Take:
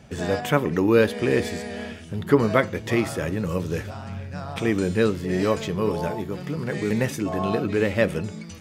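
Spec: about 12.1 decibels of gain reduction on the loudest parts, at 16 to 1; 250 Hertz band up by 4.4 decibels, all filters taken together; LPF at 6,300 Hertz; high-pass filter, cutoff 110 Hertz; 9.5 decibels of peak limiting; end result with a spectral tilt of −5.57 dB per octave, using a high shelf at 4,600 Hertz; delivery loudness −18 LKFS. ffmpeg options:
ffmpeg -i in.wav -af "highpass=110,lowpass=6300,equalizer=frequency=250:width_type=o:gain=6,highshelf=frequency=4600:gain=9,acompressor=threshold=-19dB:ratio=16,volume=10dB,alimiter=limit=-7dB:level=0:latency=1" out.wav

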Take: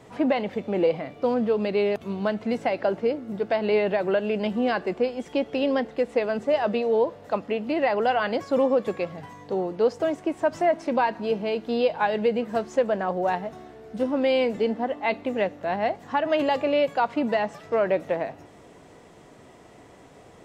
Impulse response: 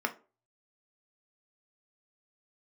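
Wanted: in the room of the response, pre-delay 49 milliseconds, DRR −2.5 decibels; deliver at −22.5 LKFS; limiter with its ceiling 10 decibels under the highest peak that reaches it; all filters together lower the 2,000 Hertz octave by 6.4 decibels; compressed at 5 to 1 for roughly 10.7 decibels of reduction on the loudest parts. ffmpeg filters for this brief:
-filter_complex "[0:a]equalizer=frequency=2000:width_type=o:gain=-8.5,acompressor=threshold=-30dB:ratio=5,alimiter=level_in=5dB:limit=-24dB:level=0:latency=1,volume=-5dB,asplit=2[link_01][link_02];[1:a]atrim=start_sample=2205,adelay=49[link_03];[link_02][link_03]afir=irnorm=-1:irlink=0,volume=-4.5dB[link_04];[link_01][link_04]amix=inputs=2:normalize=0,volume=11.5dB"

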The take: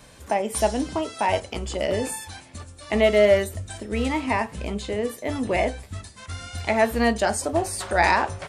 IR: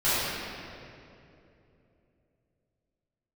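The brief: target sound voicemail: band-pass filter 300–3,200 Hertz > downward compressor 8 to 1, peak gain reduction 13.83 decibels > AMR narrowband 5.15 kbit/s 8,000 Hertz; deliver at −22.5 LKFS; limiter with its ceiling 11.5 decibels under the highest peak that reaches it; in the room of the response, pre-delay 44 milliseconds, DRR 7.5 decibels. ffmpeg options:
-filter_complex "[0:a]alimiter=limit=-18dB:level=0:latency=1,asplit=2[link_01][link_02];[1:a]atrim=start_sample=2205,adelay=44[link_03];[link_02][link_03]afir=irnorm=-1:irlink=0,volume=-23.5dB[link_04];[link_01][link_04]amix=inputs=2:normalize=0,highpass=300,lowpass=3200,acompressor=threshold=-36dB:ratio=8,volume=20dB" -ar 8000 -c:a libopencore_amrnb -b:a 5150

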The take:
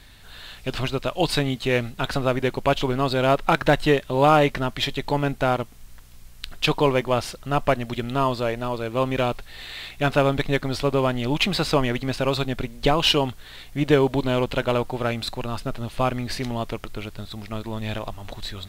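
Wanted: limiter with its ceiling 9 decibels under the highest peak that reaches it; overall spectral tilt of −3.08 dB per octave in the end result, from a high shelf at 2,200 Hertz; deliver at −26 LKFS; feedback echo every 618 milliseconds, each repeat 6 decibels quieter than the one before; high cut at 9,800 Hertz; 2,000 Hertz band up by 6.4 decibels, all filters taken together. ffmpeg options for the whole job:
ffmpeg -i in.wav -af "lowpass=9800,equalizer=frequency=2000:width_type=o:gain=5.5,highshelf=frequency=2200:gain=5,alimiter=limit=-9.5dB:level=0:latency=1,aecho=1:1:618|1236|1854|2472|3090|3708:0.501|0.251|0.125|0.0626|0.0313|0.0157,volume=-3.5dB" out.wav

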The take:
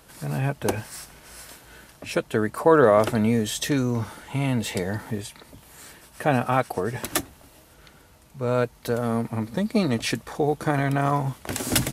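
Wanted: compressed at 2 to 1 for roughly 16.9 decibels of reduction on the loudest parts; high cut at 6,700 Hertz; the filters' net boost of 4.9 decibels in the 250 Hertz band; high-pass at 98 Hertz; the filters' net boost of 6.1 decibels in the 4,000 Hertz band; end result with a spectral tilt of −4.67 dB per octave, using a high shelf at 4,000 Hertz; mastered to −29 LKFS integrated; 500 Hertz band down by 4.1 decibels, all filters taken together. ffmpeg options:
ffmpeg -i in.wav -af "highpass=98,lowpass=6700,equalizer=frequency=250:width_type=o:gain=7.5,equalizer=frequency=500:width_type=o:gain=-7,highshelf=frequency=4000:gain=5.5,equalizer=frequency=4000:width_type=o:gain=5,acompressor=threshold=-46dB:ratio=2,volume=9.5dB" out.wav

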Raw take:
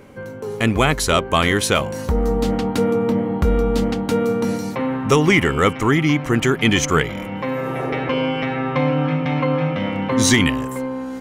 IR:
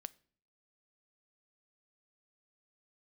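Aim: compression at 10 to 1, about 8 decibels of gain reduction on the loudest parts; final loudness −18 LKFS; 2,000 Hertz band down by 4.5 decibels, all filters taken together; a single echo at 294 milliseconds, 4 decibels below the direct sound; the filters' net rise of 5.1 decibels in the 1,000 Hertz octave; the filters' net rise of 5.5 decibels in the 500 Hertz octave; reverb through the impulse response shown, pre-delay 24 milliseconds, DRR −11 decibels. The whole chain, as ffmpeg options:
-filter_complex "[0:a]equalizer=frequency=500:width_type=o:gain=5,equalizer=frequency=1000:width_type=o:gain=7.5,equalizer=frequency=2000:width_type=o:gain=-8,acompressor=threshold=-15dB:ratio=10,aecho=1:1:294:0.631,asplit=2[link_01][link_02];[1:a]atrim=start_sample=2205,adelay=24[link_03];[link_02][link_03]afir=irnorm=-1:irlink=0,volume=15.5dB[link_04];[link_01][link_04]amix=inputs=2:normalize=0,volume=-10dB"

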